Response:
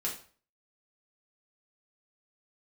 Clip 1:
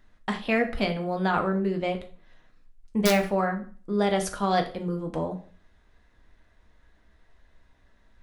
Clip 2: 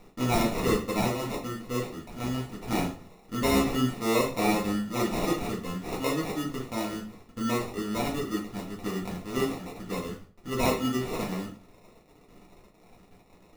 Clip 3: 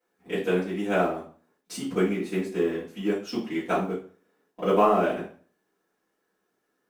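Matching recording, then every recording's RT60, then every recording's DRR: 2; 0.40 s, 0.40 s, 0.40 s; 3.5 dB, -4.5 dB, -14.0 dB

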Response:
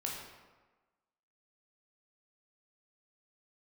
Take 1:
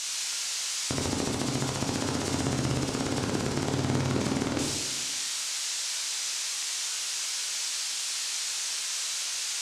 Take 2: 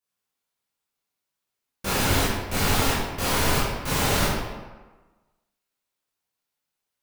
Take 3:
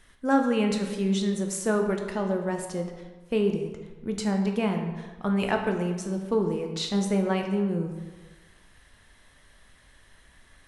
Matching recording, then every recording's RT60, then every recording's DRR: 1; 1.3 s, 1.3 s, 1.3 s; -2.5 dB, -10.0 dB, 3.5 dB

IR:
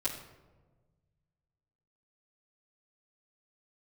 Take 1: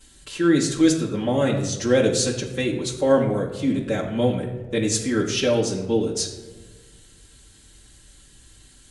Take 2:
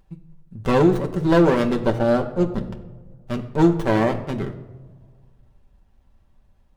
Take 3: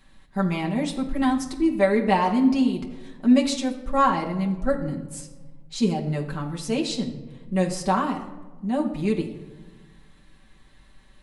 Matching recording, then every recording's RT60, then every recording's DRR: 1; 1.3 s, no single decay rate, 1.3 s; -10.5 dB, 3.0 dB, -1.0 dB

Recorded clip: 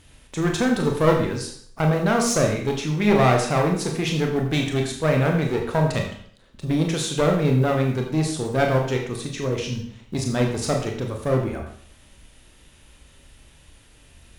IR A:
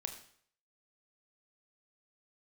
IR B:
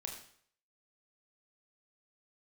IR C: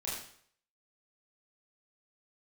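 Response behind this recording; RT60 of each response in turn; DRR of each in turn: B; 0.60 s, 0.60 s, 0.60 s; 5.5 dB, 1.0 dB, -7.0 dB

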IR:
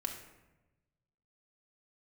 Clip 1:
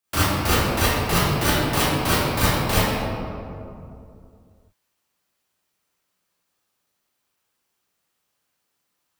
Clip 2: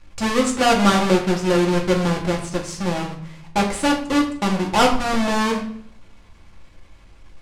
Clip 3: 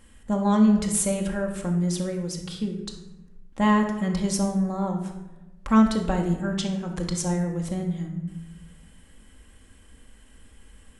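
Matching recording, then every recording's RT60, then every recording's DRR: 3; 2.6 s, 0.60 s, 1.0 s; -12.0 dB, -1.0 dB, 1.0 dB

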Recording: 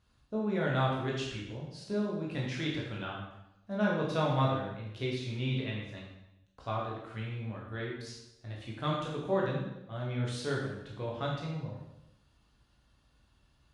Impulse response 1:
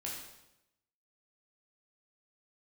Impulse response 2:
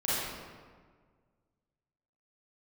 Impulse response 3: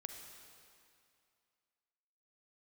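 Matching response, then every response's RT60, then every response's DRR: 1; 0.90 s, 1.7 s, 2.4 s; -4.5 dB, -10.5 dB, 4.5 dB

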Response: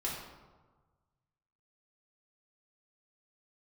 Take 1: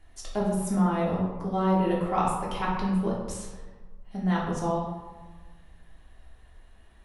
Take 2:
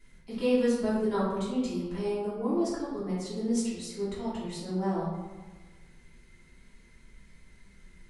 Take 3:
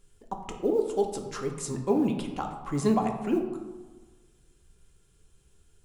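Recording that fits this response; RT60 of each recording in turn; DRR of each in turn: 1; 1.4 s, 1.4 s, 1.4 s; -5.5 dB, -11.0 dB, 3.0 dB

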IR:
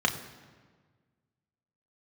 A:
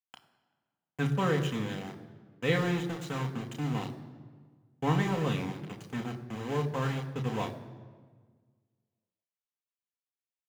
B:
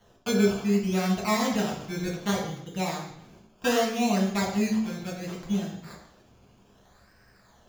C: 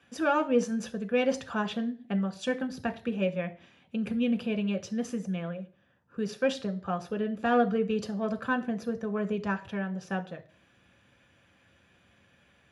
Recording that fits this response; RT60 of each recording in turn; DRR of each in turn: A; 1.5 s, 0.70 s, 0.40 s; 2.5 dB, -3.0 dB, 6.0 dB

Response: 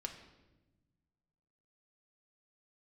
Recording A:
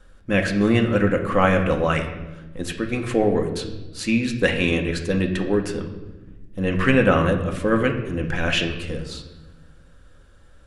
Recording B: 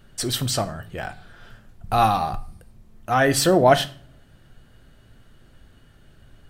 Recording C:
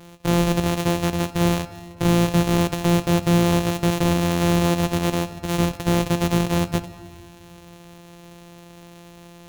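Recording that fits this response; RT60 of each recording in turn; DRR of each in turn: A; 1.1 s, 0.45 s, 2.1 s; 3.0 dB, 10.0 dB, 9.5 dB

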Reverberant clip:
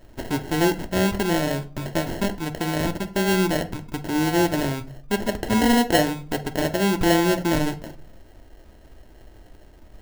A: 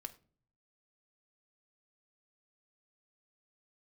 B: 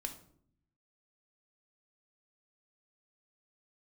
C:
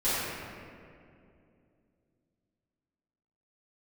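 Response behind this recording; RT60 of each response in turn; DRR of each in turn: A; no single decay rate, 0.60 s, 2.5 s; 6.5 dB, 5.0 dB, -15.0 dB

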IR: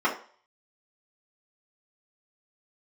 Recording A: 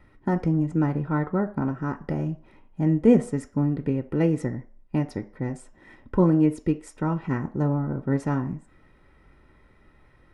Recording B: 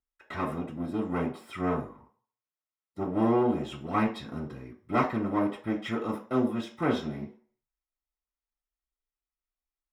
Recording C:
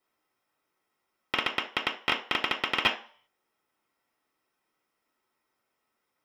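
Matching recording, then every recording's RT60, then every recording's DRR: B; 0.45 s, 0.45 s, 0.45 s; 6.0 dB, -7.0 dB, -2.0 dB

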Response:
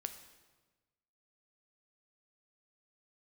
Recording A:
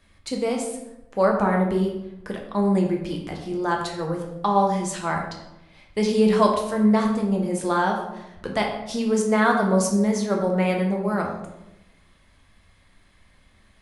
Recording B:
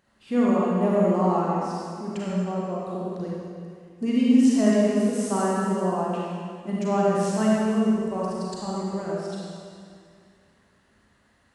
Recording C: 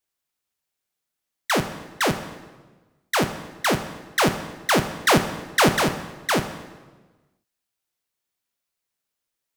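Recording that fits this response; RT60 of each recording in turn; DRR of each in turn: C; 0.95 s, 2.2 s, 1.3 s; 0.5 dB, -6.5 dB, 8.0 dB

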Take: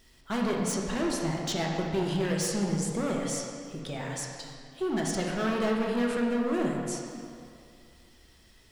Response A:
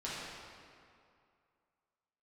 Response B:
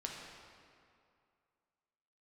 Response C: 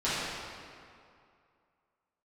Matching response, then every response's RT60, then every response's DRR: B; 2.4 s, 2.4 s, 2.4 s; -9.0 dB, -1.5 dB, -13.5 dB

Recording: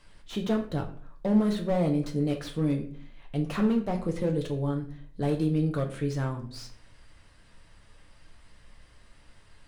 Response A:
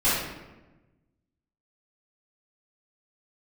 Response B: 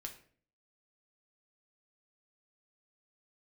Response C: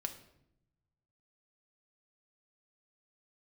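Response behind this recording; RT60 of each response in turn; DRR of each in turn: B; 1.1 s, 0.50 s, 0.80 s; -13.0 dB, 2.0 dB, 5.5 dB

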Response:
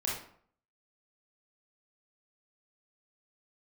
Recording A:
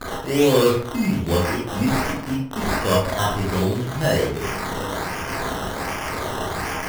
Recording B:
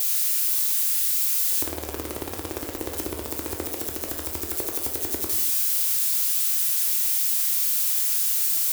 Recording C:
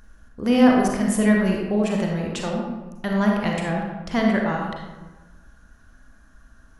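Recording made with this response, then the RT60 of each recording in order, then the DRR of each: A; 0.55 s, 0.80 s, 1.3 s; -5.0 dB, 1.5 dB, -1.0 dB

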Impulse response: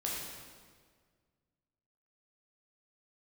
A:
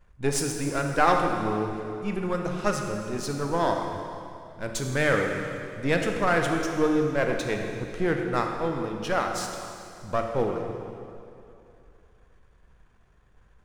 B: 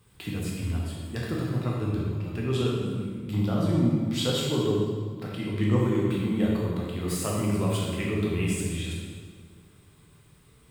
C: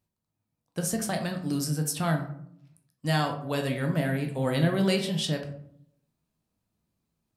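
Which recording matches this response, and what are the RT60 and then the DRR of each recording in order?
B; 2.7 s, 1.7 s, 0.70 s; 2.5 dB, -4.5 dB, 3.5 dB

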